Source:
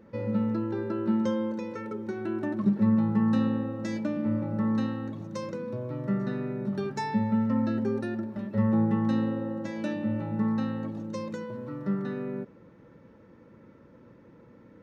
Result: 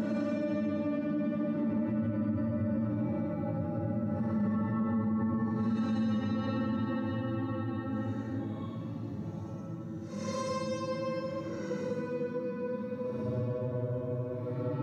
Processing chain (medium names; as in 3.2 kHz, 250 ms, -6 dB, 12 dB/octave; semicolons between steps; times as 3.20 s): Paulstretch 7.8×, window 0.10 s, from 4.03 s; peak limiter -24 dBFS, peak gain reduction 8.5 dB